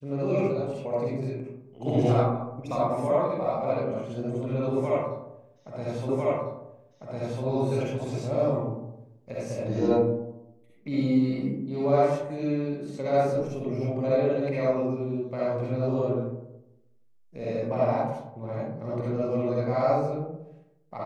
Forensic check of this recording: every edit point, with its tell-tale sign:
0:06.09: the same again, the last 1.35 s

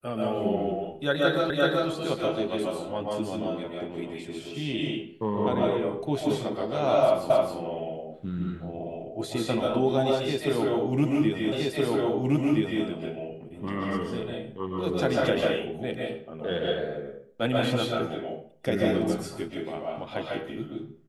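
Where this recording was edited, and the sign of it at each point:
0:01.50: the same again, the last 0.38 s
0:07.30: the same again, the last 0.27 s
0:11.52: the same again, the last 1.32 s

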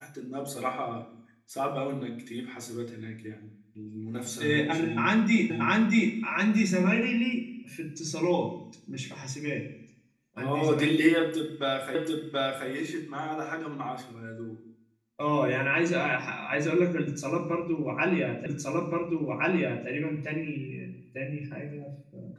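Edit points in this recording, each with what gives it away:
0:05.50: the same again, the last 0.63 s
0:11.95: the same again, the last 0.73 s
0:18.46: the same again, the last 1.42 s

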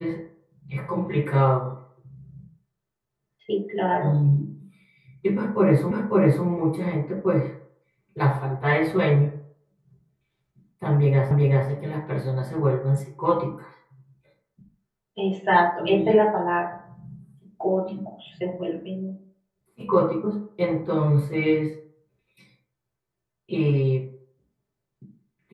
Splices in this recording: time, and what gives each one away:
0:05.91: the same again, the last 0.55 s
0:11.31: the same again, the last 0.38 s

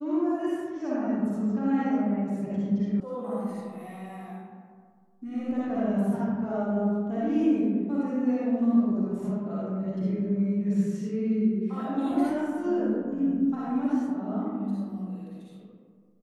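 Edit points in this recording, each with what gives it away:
0:03.00: cut off before it has died away

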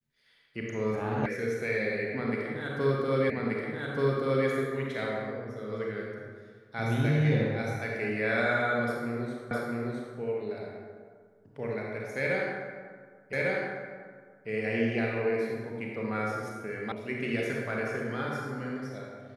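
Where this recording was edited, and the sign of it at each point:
0:01.26: cut off before it has died away
0:03.30: the same again, the last 1.18 s
0:09.51: the same again, the last 0.66 s
0:13.33: the same again, the last 1.15 s
0:16.92: cut off before it has died away

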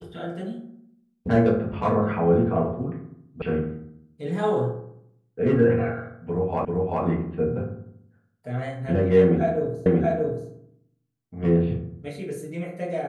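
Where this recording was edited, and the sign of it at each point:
0:03.42: cut off before it has died away
0:06.65: the same again, the last 0.39 s
0:09.86: the same again, the last 0.63 s

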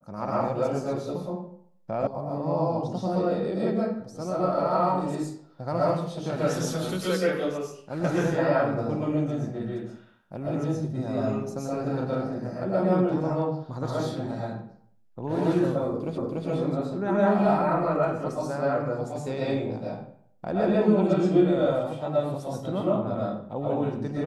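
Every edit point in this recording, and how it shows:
0:02.07: cut off before it has died away
0:16.18: the same again, the last 0.29 s

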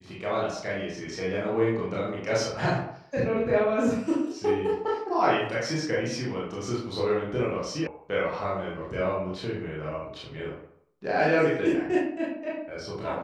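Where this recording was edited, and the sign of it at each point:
0:07.87: cut off before it has died away

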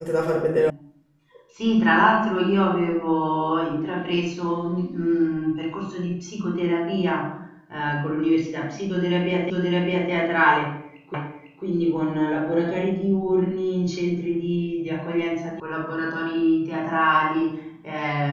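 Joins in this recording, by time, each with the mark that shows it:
0:00.70: cut off before it has died away
0:09.50: the same again, the last 0.61 s
0:11.14: the same again, the last 0.5 s
0:15.60: cut off before it has died away

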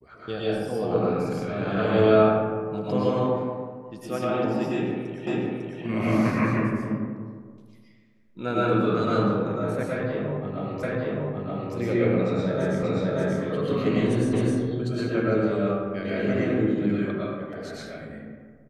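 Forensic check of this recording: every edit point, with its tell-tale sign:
0:05.27: the same again, the last 0.55 s
0:10.83: the same again, the last 0.92 s
0:12.83: the same again, the last 0.58 s
0:14.33: the same again, the last 0.26 s

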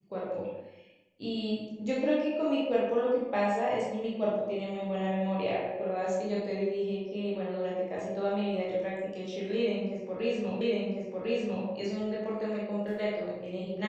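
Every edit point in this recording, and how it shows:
0:10.61: the same again, the last 1.05 s

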